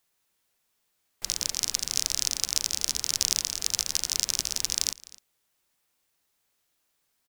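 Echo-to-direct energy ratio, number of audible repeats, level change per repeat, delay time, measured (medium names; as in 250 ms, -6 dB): -21.0 dB, 1, no regular repeats, 256 ms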